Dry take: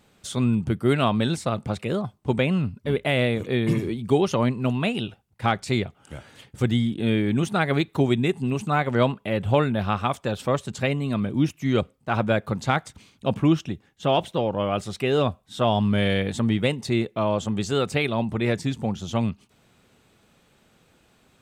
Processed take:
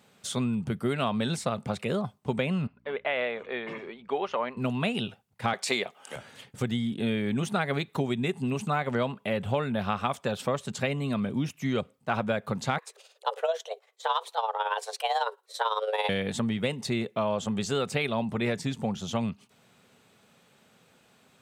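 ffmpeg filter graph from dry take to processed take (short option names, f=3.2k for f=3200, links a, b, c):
-filter_complex "[0:a]asettb=1/sr,asplit=3[a][b][c];[a]atrim=end=2.674[d];[b]atrim=start=2.67:end=4.57,asetpts=PTS-STARTPTS,afade=t=in:d=0.004:c=qsin,afade=t=out:st=1.896:d=0.004:c=qsin,highpass=600,lowpass=2.2k,aeval=exprs='val(0)+0.00141*(sin(2*PI*60*n/s)+sin(2*PI*2*60*n/s)/2+sin(2*PI*3*60*n/s)/3+sin(2*PI*4*60*n/s)/4+sin(2*PI*5*60*n/s)/5)':c=same[e];[c]atrim=start=4.566[f];[d][e]acrossfade=d=0.004:c1=hsin:c2=qsin[g];[g][f]acrossfade=d=0.004:c1=qsin:c2=hsin,asettb=1/sr,asplit=3[h][i][j];[h]atrim=end=5.534[k];[i]atrim=start=5.53:end=6.16,asetpts=PTS-STARTPTS,afade=t=in:d=0.004:c=qsin,afade=t=out:st=0.626:d=0.004:c=qsin,highpass=460,bandreject=f=1.4k:w=10,acontrast=66[l];[j]atrim=start=6.156[m];[k][l]acrossfade=d=0.004:c1=hsin:c2=qsin[n];[n][m]acrossfade=d=0.004:c1=qsin:c2=hsin,asettb=1/sr,asplit=3[o][p][q];[o]atrim=end=12.784[r];[p]atrim=start=12.78:end=16.09,asetpts=PTS-STARTPTS,afade=t=in:d=0.004:c=qsin,afade=t=out:st=3.306:d=0.004:c=qsin,bass=f=250:g=-6,treble=f=4k:g=2,afreqshift=330,tremolo=f=18:d=0.62[s];[q]atrim=start=16.086[t];[r][s]acrossfade=d=0.004:c1=hsin:c2=qsin[u];[u][t]acrossfade=d=0.004:c1=qsin:c2=hsin,equalizer=f=320:t=o:w=0.21:g=-11.5,acompressor=threshold=-23dB:ratio=6,highpass=140"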